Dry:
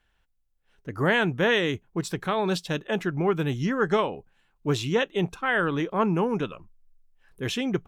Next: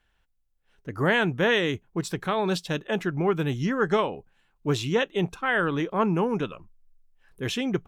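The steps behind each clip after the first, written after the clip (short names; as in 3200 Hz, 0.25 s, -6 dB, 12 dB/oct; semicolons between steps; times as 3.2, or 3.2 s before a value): nothing audible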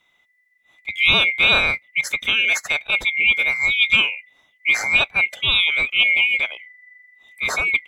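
band-swap scrambler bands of 2000 Hz; gain +6.5 dB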